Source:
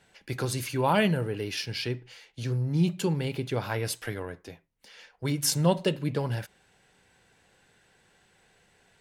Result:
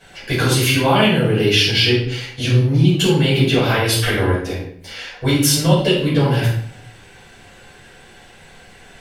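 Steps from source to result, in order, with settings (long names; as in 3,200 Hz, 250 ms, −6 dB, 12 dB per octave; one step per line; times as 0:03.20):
dynamic equaliser 3,200 Hz, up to +8 dB, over −52 dBFS, Q 2.3
downward compressor 5 to 1, threshold −31 dBFS, peak gain reduction 12.5 dB
convolution reverb RT60 0.60 s, pre-delay 4 ms, DRR −9.5 dB
level +6.5 dB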